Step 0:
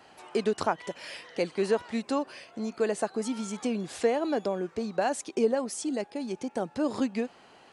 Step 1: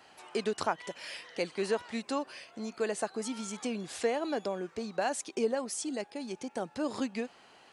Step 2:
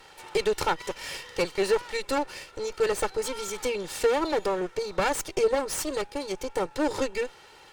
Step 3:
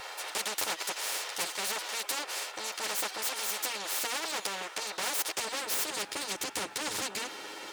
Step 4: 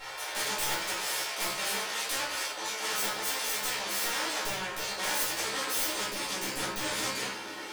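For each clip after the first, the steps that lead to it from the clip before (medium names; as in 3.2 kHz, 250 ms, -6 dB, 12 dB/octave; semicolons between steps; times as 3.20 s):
tilt shelf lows -3 dB; trim -3 dB
comb filter that takes the minimum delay 2.2 ms; sine folder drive 4 dB, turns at -16 dBFS
comb filter that takes the minimum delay 9.5 ms; high-pass sweep 710 Hz -> 290 Hz, 5.28–6.27 s; spectrum-flattening compressor 4:1; trim -4.5 dB
integer overflow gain 19.5 dB; feedback comb 67 Hz, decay 0.22 s, harmonics all, mix 90%; simulated room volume 120 m³, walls mixed, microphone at 2.2 m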